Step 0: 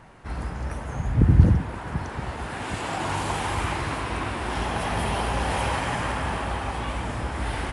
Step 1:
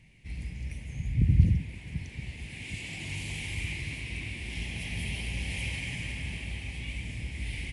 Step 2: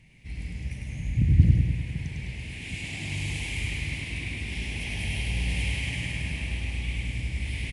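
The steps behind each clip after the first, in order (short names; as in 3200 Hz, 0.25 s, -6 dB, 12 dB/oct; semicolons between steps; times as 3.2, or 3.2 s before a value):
EQ curve 160 Hz 0 dB, 1400 Hz -29 dB, 2200 Hz +7 dB, 3600 Hz -1 dB; gain -5.5 dB
feedback echo 0.102 s, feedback 59%, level -3 dB; Doppler distortion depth 0.45 ms; gain +1.5 dB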